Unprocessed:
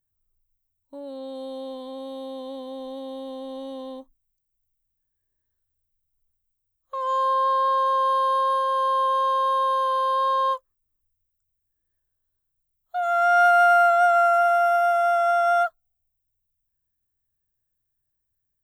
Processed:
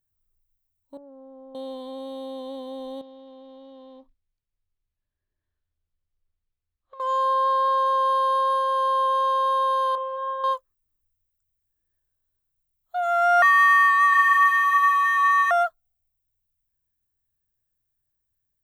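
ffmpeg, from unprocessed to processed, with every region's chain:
-filter_complex "[0:a]asettb=1/sr,asplit=3[a][b][c];[a]atrim=end=0.974[d];[b]atrim=start=0.97:end=1.55,asetpts=PTS-STARTPTS,afade=t=in:d=0.004:c=qsin,afade=t=out:st=0.576:d=0.004:c=qsin,lowpass=f=1.2k:w=0.5412,lowpass=f=1.2k:w=1.3066,equalizer=f=470:w=0.34:g=-11[e];[c]atrim=start=1.546[f];[d][e]acrossfade=d=0.004:c1=hsin:c2=qsin[g];[g][f]acrossfade=d=0.004:c1=qsin:c2=hsin,asettb=1/sr,asplit=3[h][i][j];[h]atrim=end=3.014[k];[i]atrim=start=3.01:end=7,asetpts=PTS-STARTPTS,afade=t=in:d=0.004:c=qsin,afade=t=out:st=3.986:d=0.004:c=qsin,acrusher=bits=7:mode=log:mix=0:aa=0.000001,acompressor=threshold=-44dB:ratio=5:attack=3.2:release=140:knee=1:detection=peak,lowpass=f=4.2k:w=0.5412,lowpass=f=4.2k:w=1.3066[l];[j]atrim=start=6.996[m];[k][l]acrossfade=d=0.004:c1=hsin:c2=qsin[n];[n][m]acrossfade=d=0.004:c1=qsin:c2=hsin,asettb=1/sr,asplit=3[o][p][q];[o]atrim=end=9.954[r];[p]atrim=start=9.95:end=10.44,asetpts=PTS-STARTPTS,afade=t=in:d=0.004:c=qsin,afade=t=out:st=0.486:d=0.004:c=qsin,highpass=440,equalizer=f=490:t=q:w=4:g=-4,equalizer=f=1k:t=q:w=4:g=-5,equalizer=f=1.6k:t=q:w=4:g=-8,lowpass=f=2.1k:w=0.5412,lowpass=f=2.1k:w=1.3066,asplit=2[s][t];[t]adelay=25,volume=-4.5dB[u];[s][u]amix=inputs=2:normalize=0,atrim=end_sample=21609[v];[q]atrim=start=10.436[w];[r][v]acrossfade=d=0.004:c1=hsin:c2=qsin[x];[x][w]acrossfade=d=0.004:c1=qsin:c2=hsin,asettb=1/sr,asplit=3[y][z][aa];[y]atrim=end=13.424[ab];[z]atrim=start=13.42:end=15.51,asetpts=PTS-STARTPTS,afade=t=in:d=0.004:c=qsin,afade=t=out:st=2.086:d=0.004:c=qsin,afreqshift=440,aecho=1:1:702:0.376,atrim=end_sample=92169[ac];[aa]atrim=start=15.506[ad];[ab][ac]acrossfade=d=0.004:c1=hsin:c2=qsin[ae];[ae][ad]acrossfade=d=0.004:c1=qsin:c2=hsin"

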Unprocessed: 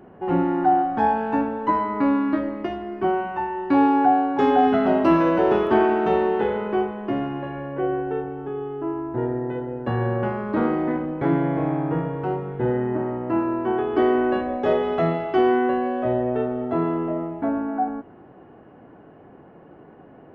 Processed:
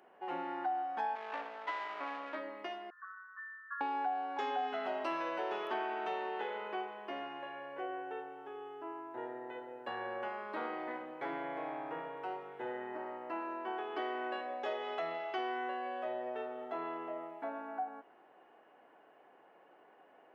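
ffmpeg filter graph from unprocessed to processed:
-filter_complex "[0:a]asettb=1/sr,asplit=3[a][b][c];[a]atrim=end=1.154[d];[b]atrim=start=1.15:end=2.35,asetpts=PTS-STARTPTS,afade=t=in:d=0.004:c=qsin,afade=t=out:st=1.196:d=0.004:c=qsin,aeval=exprs='max(val(0),0)':c=same,highpass=250,lowpass=3.3k[e];[c]atrim=start=2.346[f];[d][e]acrossfade=d=0.004:c1=hsin:c2=qsin[g];[g][f]acrossfade=d=0.004:c1=qsin:c2=hsin,asettb=1/sr,asplit=3[h][i][j];[h]atrim=end=2.904[k];[i]atrim=start=2.9:end=3.81,asetpts=PTS-STARTPTS,afade=t=in:d=0.004:c=qsin,afade=t=out:st=0.906:d=0.004:c=qsin,asuperpass=centerf=1400:order=20:qfactor=1.9,asplit=2[l][m];[m]adelay=13,volume=-3dB[n];[l][n]amix=inputs=2:normalize=0,atrim=end_sample=40131[o];[j]atrim=start=3.806[p];[k][o]acrossfade=d=0.004:c1=hsin:c2=qsin[q];[q][p]acrossfade=d=0.004:c1=qsin:c2=hsin,highpass=900,equalizer=f=1.3k:t=o:w=1.1:g=-5.5,acompressor=threshold=-32dB:ratio=2.5,volume=-3.5dB"

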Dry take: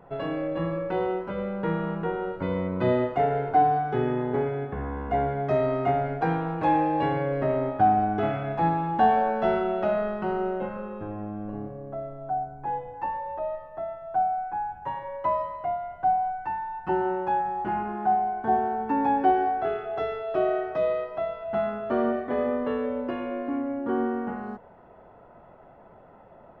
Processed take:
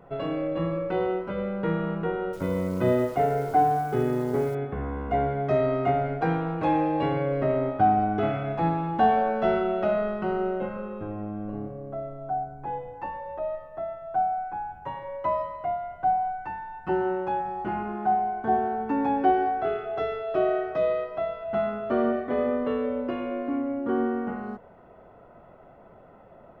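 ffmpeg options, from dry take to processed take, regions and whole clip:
-filter_complex "[0:a]asettb=1/sr,asplit=3[a][b][c];[a]atrim=end=2.334[d];[b]atrim=start=2.33:end=4.55,asetpts=PTS-STARTPTS,afade=t=in:d=0.004:c=qsin,afade=t=out:st=2.216:d=0.004:c=qsin,lowpass=f=2.6k:p=1,acrusher=bits=9:dc=4:mix=0:aa=0.000001[e];[c]atrim=start=4.546[f];[d][e]acrossfade=d=0.004:c1=hsin:c2=qsin[g];[g][f]acrossfade=d=0.004:c1=qsin:c2=hsin,equalizer=f=890:w=5:g=-6,bandreject=f=1.7k:w=17,volume=1dB"

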